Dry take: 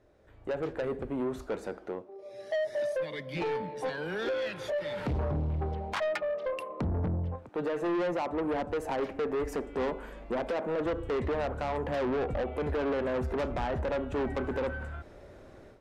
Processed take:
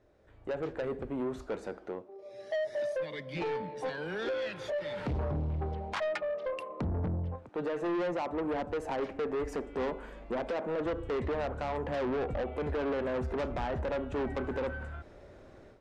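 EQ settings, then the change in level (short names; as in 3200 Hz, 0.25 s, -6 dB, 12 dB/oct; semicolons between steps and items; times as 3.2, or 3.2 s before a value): LPF 8700 Hz 12 dB/oct; -2.0 dB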